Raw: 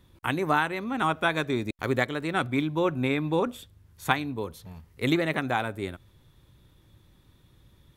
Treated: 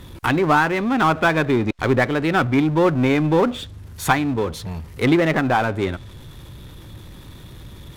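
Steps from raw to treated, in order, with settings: treble ducked by the level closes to 2400 Hz, closed at -23.5 dBFS; power-law curve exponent 0.7; gain +4 dB

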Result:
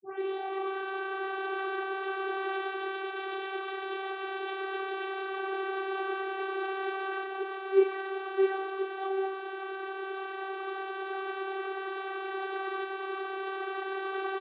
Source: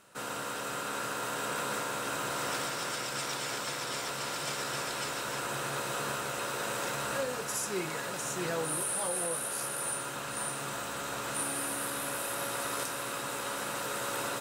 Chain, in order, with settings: tape start at the beginning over 0.78 s; downsampling 8000 Hz; vocoder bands 32, saw 386 Hz; gain +4 dB

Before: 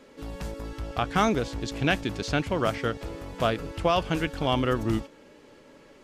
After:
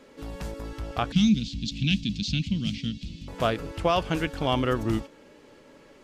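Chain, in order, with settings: 1.12–3.28 EQ curve 120 Hz 0 dB, 210 Hz +10 dB, 410 Hz -24 dB, 690 Hz -30 dB, 1200 Hz -30 dB, 1700 Hz -21 dB, 2600 Hz +1 dB, 3800 Hz +7 dB, 6700 Hz -1 dB, 11000 Hz -15 dB

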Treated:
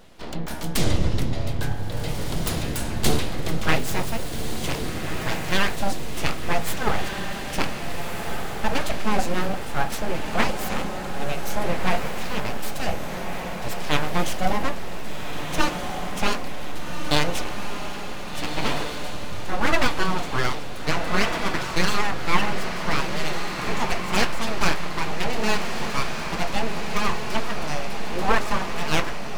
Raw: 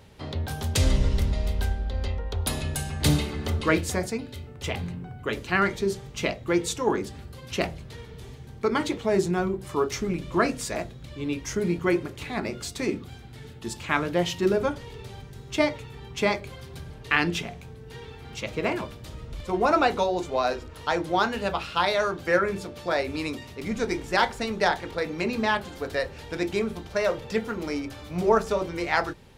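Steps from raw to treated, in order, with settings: full-wave rectifier; diffused feedback echo 1.578 s, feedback 59%, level -5.5 dB; gain +3.5 dB

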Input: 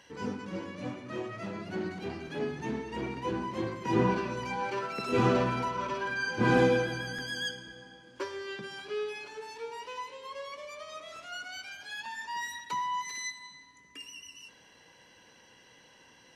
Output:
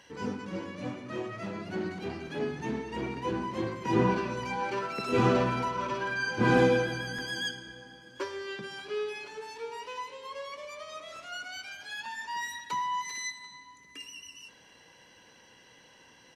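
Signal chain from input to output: echo 0.738 s -23.5 dB; gain +1 dB

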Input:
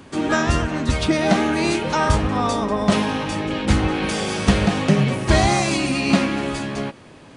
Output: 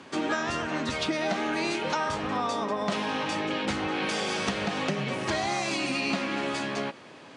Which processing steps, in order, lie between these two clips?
low shelf 300 Hz -9.5 dB; compressor, threshold -25 dBFS, peak gain reduction 10 dB; BPF 130–6700 Hz

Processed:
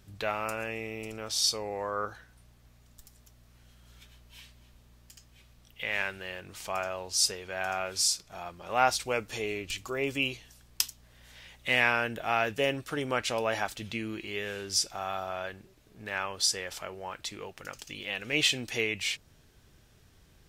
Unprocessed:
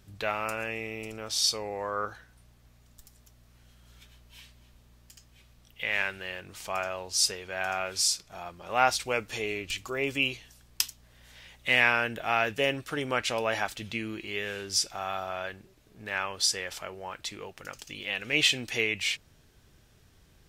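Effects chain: dynamic EQ 2300 Hz, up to -3 dB, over -40 dBFS, Q 0.81

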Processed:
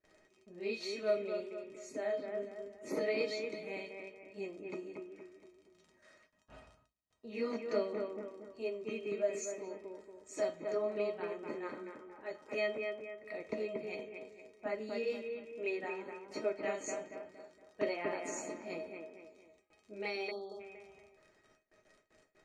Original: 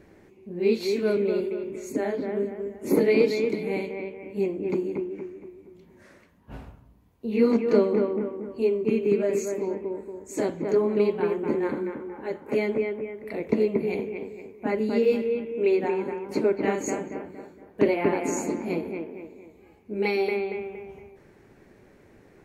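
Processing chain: crackle 42/s -42 dBFS; LPF 8100 Hz 24 dB/oct; gate with hold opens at -42 dBFS; low shelf 360 Hz -12 dB; resonator 630 Hz, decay 0.15 s, harmonics all, mix 90%; spectral delete 20.31–20.6, 1300–3200 Hz; gain +6.5 dB

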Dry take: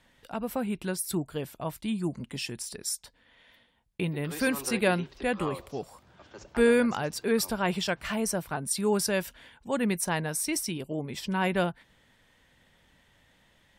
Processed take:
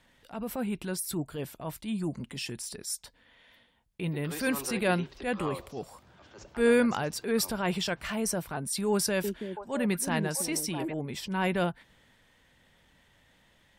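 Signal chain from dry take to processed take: transient shaper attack -7 dB, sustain +1 dB; 8.91–10.94 delay with a stepping band-pass 0.328 s, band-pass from 290 Hz, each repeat 1.4 oct, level -2 dB

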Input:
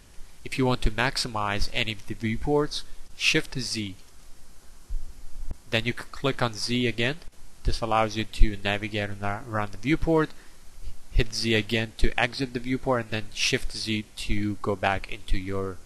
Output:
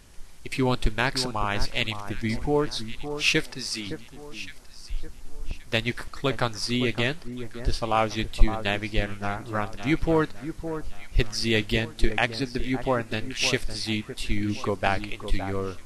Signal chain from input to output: 3.43–3.87 HPF 370 Hz 6 dB/oct; on a send: echo with dull and thin repeats by turns 0.562 s, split 1500 Hz, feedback 53%, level -10 dB

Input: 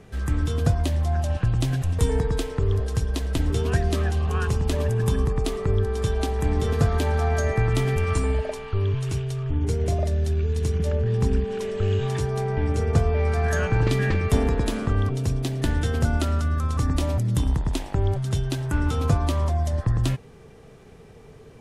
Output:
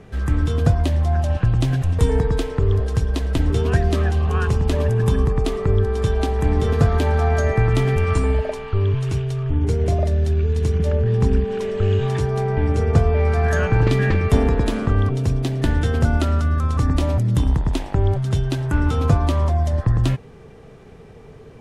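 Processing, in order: high shelf 4800 Hz -8.5 dB; gain +4.5 dB

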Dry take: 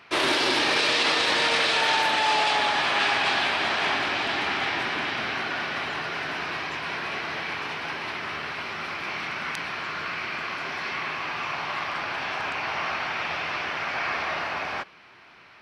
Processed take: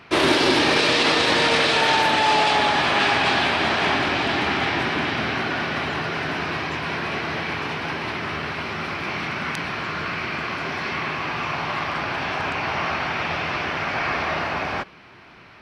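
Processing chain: low shelf 410 Hz +11 dB; gain +2.5 dB

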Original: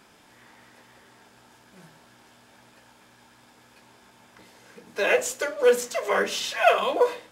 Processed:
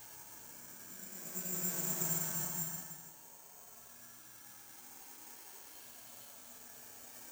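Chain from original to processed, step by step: gate -47 dBFS, range -15 dB; reverb removal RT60 1.8 s; Paulstretch 7.7×, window 0.25 s, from 1.56; careless resampling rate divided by 6×, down filtered, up zero stuff; gain +15.5 dB

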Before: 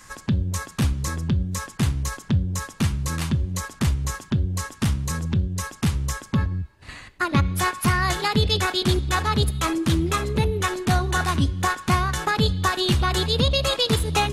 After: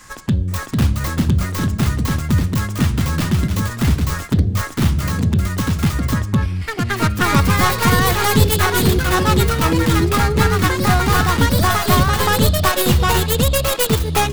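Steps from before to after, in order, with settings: tracing distortion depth 0.29 ms; echoes that change speed 0.479 s, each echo +2 st, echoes 2; gain +4.5 dB

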